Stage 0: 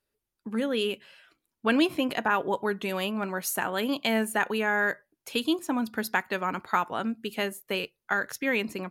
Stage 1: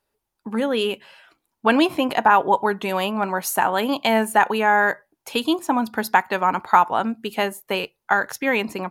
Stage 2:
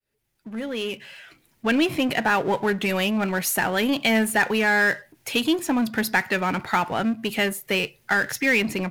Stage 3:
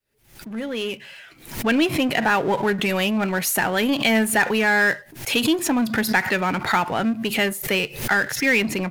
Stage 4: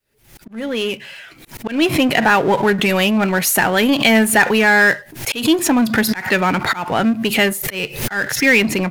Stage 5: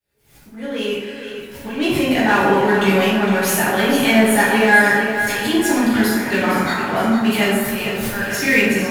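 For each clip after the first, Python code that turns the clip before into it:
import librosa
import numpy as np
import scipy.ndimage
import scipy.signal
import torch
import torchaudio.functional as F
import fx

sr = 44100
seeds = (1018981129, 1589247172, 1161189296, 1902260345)

y1 = fx.peak_eq(x, sr, hz=860.0, db=10.0, octaves=0.78)
y1 = y1 * librosa.db_to_amplitude(4.5)
y2 = fx.fade_in_head(y1, sr, length_s=2.38)
y2 = fx.graphic_eq(y2, sr, hz=(125, 1000, 2000), db=(8, -11, 7))
y2 = fx.power_curve(y2, sr, exponent=0.7)
y2 = y2 * librosa.db_to_amplitude(-4.5)
y3 = fx.pre_swell(y2, sr, db_per_s=110.0)
y3 = y3 * librosa.db_to_amplitude(1.5)
y4 = fx.auto_swell(y3, sr, attack_ms=188.0)
y4 = y4 * librosa.db_to_amplitude(6.0)
y5 = fx.echo_feedback(y4, sr, ms=459, feedback_pct=55, wet_db=-9.5)
y5 = fx.rev_plate(y5, sr, seeds[0], rt60_s=1.3, hf_ratio=0.5, predelay_ms=0, drr_db=-8.0)
y5 = y5 * librosa.db_to_amplitude(-10.5)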